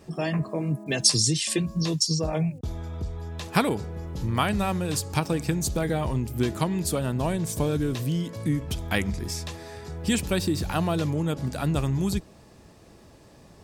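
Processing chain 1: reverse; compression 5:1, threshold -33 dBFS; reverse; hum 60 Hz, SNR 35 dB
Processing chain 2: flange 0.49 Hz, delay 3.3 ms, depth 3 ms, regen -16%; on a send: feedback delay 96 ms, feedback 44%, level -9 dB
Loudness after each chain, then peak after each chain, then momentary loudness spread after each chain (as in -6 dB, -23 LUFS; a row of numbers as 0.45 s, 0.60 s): -36.0 LUFS, -29.0 LUFS; -20.5 dBFS, -8.5 dBFS; 6 LU, 10 LU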